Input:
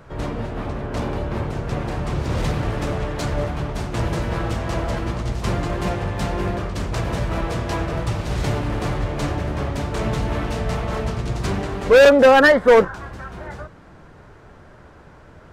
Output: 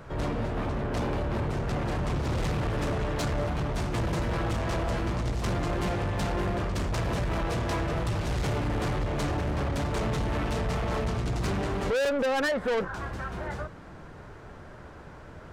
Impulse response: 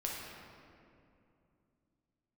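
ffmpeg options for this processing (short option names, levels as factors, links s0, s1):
-af "acompressor=threshold=0.112:ratio=6,asoftclip=type=tanh:threshold=0.0631"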